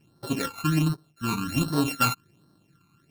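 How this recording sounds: a buzz of ramps at a fixed pitch in blocks of 32 samples; phasing stages 12, 1.3 Hz, lowest notch 550–2500 Hz

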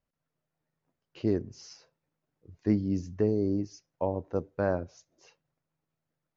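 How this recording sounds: noise floor -86 dBFS; spectral tilt -7.0 dB/oct

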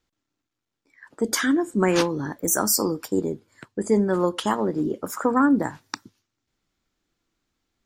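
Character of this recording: noise floor -83 dBFS; spectral tilt -4.0 dB/oct

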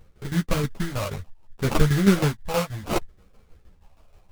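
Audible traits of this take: tremolo saw down 6.3 Hz, depth 75%; phasing stages 12, 0.67 Hz, lowest notch 320–1400 Hz; aliases and images of a low sample rate 1800 Hz, jitter 20%; a shimmering, thickened sound

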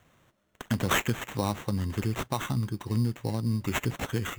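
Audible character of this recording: aliases and images of a low sample rate 4800 Hz, jitter 0%

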